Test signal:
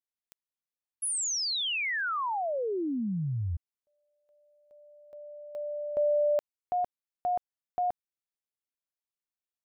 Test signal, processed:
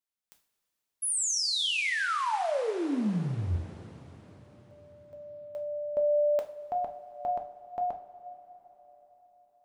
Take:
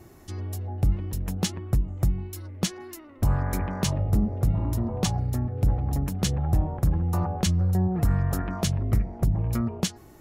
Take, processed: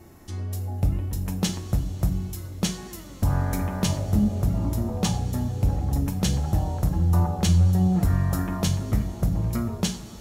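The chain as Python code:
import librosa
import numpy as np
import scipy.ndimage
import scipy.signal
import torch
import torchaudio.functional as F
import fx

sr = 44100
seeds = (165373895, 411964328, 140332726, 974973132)

y = fx.rev_double_slope(x, sr, seeds[0], early_s=0.4, late_s=4.8, knee_db=-18, drr_db=4.0)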